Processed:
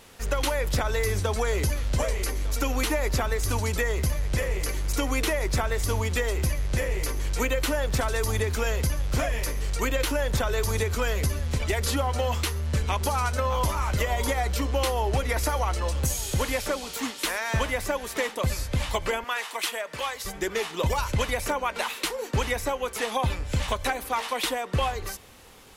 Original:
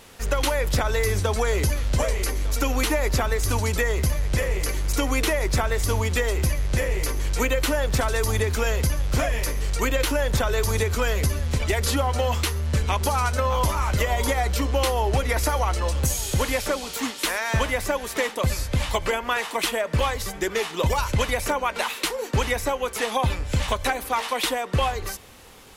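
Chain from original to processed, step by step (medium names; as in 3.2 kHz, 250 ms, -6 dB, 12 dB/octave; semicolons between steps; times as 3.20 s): 19.24–20.25 s: high-pass 920 Hz 6 dB/octave; trim -3 dB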